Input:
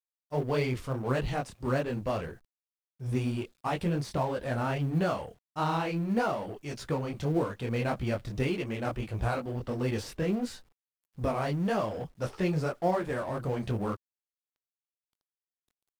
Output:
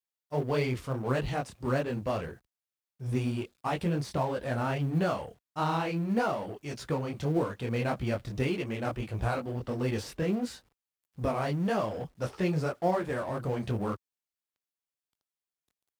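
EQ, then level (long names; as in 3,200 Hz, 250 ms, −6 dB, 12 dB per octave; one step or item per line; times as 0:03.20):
high-pass filter 47 Hz
0.0 dB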